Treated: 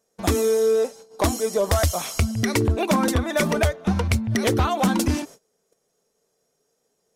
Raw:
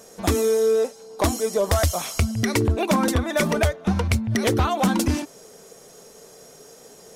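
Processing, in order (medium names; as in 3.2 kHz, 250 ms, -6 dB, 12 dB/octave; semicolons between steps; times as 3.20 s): gate -40 dBFS, range -25 dB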